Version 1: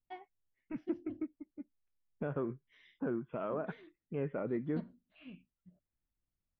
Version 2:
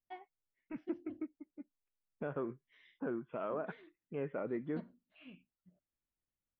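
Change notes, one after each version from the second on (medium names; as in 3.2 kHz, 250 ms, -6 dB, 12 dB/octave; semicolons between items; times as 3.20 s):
first voice: add distance through air 96 m; master: add bass shelf 190 Hz -10 dB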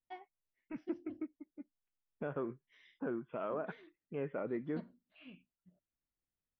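master: add peaking EQ 5.5 kHz +9 dB 0.56 oct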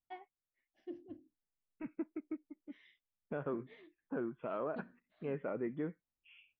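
second voice: entry +1.10 s; master: add peaking EQ 5.5 kHz -9 dB 0.56 oct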